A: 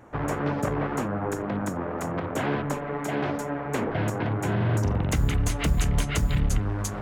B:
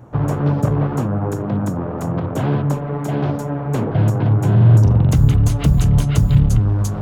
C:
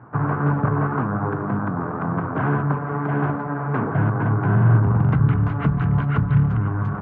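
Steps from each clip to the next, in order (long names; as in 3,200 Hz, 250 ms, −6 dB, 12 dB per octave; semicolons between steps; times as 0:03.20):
graphic EQ with 10 bands 125 Hz +12 dB, 2,000 Hz −9 dB, 8,000 Hz −4 dB; level +4.5 dB
loudspeaker in its box 140–2,100 Hz, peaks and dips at 220 Hz −3 dB, 340 Hz −4 dB, 550 Hz −9 dB, 1,100 Hz +6 dB, 1,500 Hz +8 dB; slap from a distant wall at 88 metres, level −12 dB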